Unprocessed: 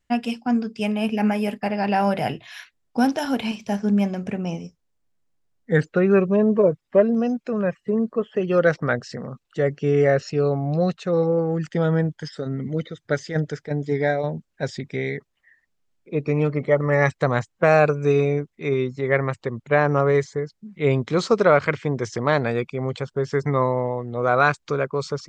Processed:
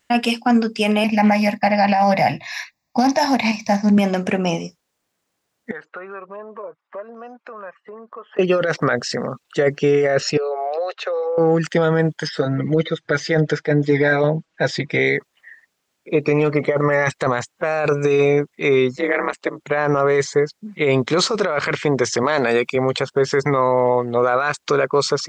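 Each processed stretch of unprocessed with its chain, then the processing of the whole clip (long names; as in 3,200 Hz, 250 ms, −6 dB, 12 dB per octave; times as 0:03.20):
0:01.04–0:03.98: low-shelf EQ 390 Hz +4.5 dB + phaser with its sweep stopped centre 2,100 Hz, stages 8 + highs frequency-modulated by the lows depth 0.16 ms
0:05.71–0:08.39: resonant band-pass 1,100 Hz, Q 2.1 + downward compressor 3 to 1, threshold −46 dBFS
0:10.37–0:11.38: Butterworth high-pass 400 Hz 72 dB per octave + downward compressor 10 to 1, threshold −30 dBFS + high-frequency loss of the air 170 metres
0:12.27–0:14.99: high-frequency loss of the air 110 metres + comb filter 6.2 ms, depth 78%
0:18.96–0:19.61: high-pass filter 190 Hz 24 dB per octave + low-shelf EQ 250 Hz −9 dB + ring modulation 84 Hz
0:22.23–0:22.76: high-pass filter 160 Hz + high-shelf EQ 5,800 Hz +7.5 dB
whole clip: high-pass filter 480 Hz 6 dB per octave; compressor whose output falls as the input rises −25 dBFS, ratio −1; boost into a limiter +17.5 dB; level −6 dB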